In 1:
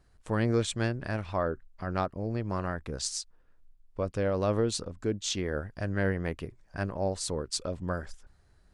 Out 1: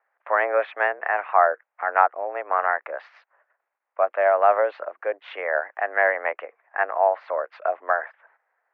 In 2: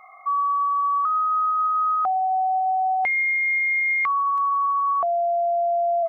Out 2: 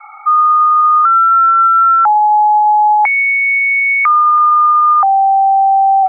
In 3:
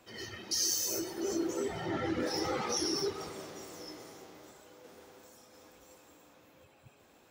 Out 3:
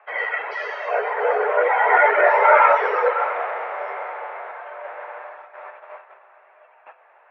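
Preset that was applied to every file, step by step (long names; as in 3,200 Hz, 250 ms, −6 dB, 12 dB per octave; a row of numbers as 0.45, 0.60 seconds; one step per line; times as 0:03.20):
noise gate −57 dBFS, range −12 dB
single-sideband voice off tune +91 Hz 540–2,100 Hz
normalise the peak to −2 dBFS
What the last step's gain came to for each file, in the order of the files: +14.5, +12.5, +25.0 decibels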